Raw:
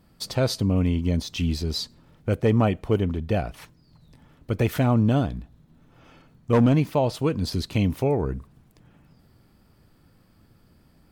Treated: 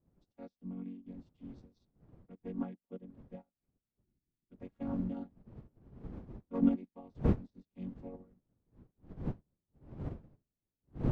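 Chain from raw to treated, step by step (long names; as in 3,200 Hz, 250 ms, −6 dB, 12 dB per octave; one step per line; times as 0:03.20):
channel vocoder with a chord as carrier major triad, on F#3
wind on the microphone 210 Hz −28 dBFS
gain on a spectral selection 0:04.04–0:04.53, 390–1,400 Hz −9 dB
expander for the loud parts 2.5 to 1, over −42 dBFS
level −7 dB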